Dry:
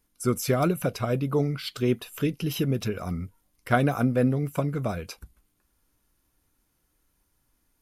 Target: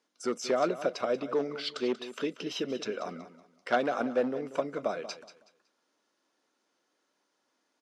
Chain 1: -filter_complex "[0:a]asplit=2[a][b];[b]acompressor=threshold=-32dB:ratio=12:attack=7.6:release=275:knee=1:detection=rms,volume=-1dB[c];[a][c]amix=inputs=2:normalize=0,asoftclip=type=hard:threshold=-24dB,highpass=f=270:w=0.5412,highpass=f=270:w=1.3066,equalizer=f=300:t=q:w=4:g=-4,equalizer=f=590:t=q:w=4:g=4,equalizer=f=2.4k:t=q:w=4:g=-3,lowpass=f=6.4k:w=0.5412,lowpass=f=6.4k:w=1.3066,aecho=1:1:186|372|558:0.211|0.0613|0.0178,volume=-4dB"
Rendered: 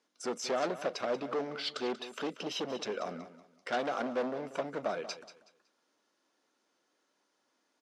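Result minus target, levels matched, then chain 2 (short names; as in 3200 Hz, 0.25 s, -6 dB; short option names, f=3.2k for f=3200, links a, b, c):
hard clip: distortion +13 dB
-filter_complex "[0:a]asplit=2[a][b];[b]acompressor=threshold=-32dB:ratio=12:attack=7.6:release=275:knee=1:detection=rms,volume=-1dB[c];[a][c]amix=inputs=2:normalize=0,asoftclip=type=hard:threshold=-15dB,highpass=f=270:w=0.5412,highpass=f=270:w=1.3066,equalizer=f=300:t=q:w=4:g=-4,equalizer=f=590:t=q:w=4:g=4,equalizer=f=2.4k:t=q:w=4:g=-3,lowpass=f=6.4k:w=0.5412,lowpass=f=6.4k:w=1.3066,aecho=1:1:186|372|558:0.211|0.0613|0.0178,volume=-4dB"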